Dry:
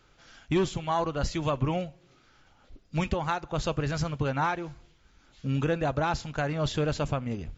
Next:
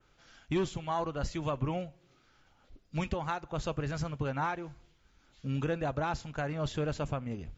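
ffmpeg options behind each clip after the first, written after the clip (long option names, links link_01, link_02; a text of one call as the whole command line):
ffmpeg -i in.wav -af "adynamicequalizer=threshold=0.00251:dfrequency=4400:dqfactor=1.1:tfrequency=4400:tqfactor=1.1:attack=5:release=100:ratio=0.375:range=2:mode=cutabove:tftype=bell,volume=-5dB" out.wav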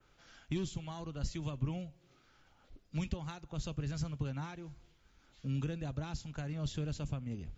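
ffmpeg -i in.wav -filter_complex "[0:a]acrossover=split=270|3000[link_01][link_02][link_03];[link_02]acompressor=threshold=-51dB:ratio=3[link_04];[link_01][link_04][link_03]amix=inputs=3:normalize=0,volume=-1dB" out.wav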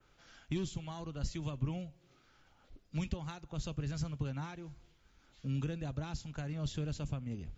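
ffmpeg -i in.wav -af anull out.wav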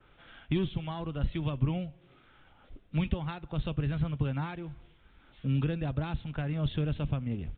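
ffmpeg -i in.wav -af "aresample=8000,aresample=44100,volume=7dB" out.wav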